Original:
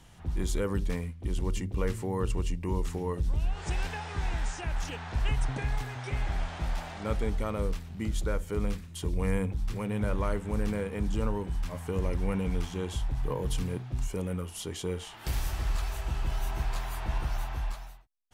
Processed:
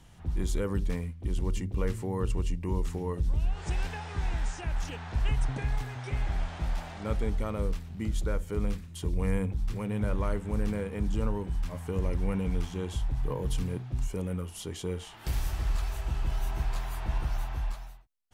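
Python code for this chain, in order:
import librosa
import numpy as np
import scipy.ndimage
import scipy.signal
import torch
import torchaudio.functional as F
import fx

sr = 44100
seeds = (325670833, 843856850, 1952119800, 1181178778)

y = fx.low_shelf(x, sr, hz=320.0, db=3.5)
y = y * librosa.db_to_amplitude(-2.5)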